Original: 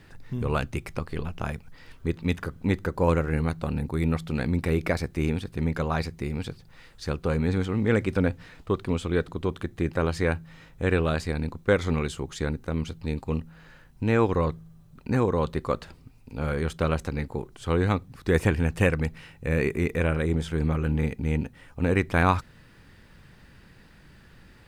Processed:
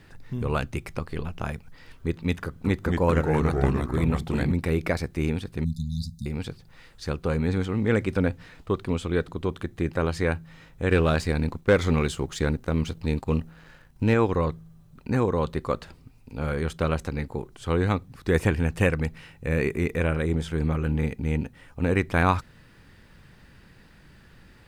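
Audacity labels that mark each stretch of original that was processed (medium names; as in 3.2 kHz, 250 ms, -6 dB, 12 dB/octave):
2.450000	4.520000	ever faster or slower copies 195 ms, each echo -2 st, echoes 2
5.640000	6.260000	brick-wall FIR band-stop 250–3500 Hz
10.910000	14.140000	waveshaping leveller passes 1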